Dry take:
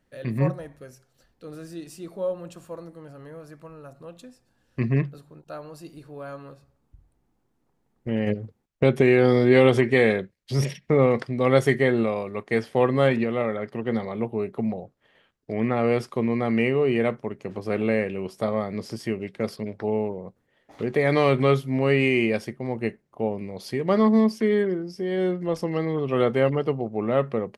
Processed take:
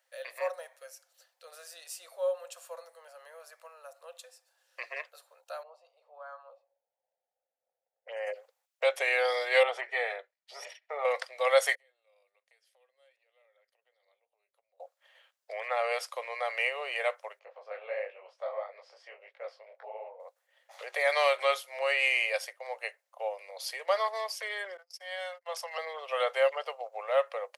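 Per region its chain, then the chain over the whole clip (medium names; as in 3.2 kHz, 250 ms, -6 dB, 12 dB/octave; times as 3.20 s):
5.63–8.34 s: level-controlled noise filter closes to 1 kHz, open at -22 dBFS + touch-sensitive phaser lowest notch 180 Hz, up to 3.7 kHz, full sweep at -22.5 dBFS
9.63–11.05 s: low-pass 1.2 kHz 6 dB/octave + comb of notches 540 Hz
11.75–14.80 s: amplifier tone stack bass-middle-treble 10-0-1 + compression, threshold -52 dBFS
17.39–20.20 s: tape spacing loss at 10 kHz 34 dB + detune thickener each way 54 cents
24.77–25.78 s: high-pass 620 Hz 24 dB/octave + gate -48 dBFS, range -29 dB
whole clip: Chebyshev high-pass 520 Hz, order 6; treble shelf 3.3 kHz +9.5 dB; trim -3 dB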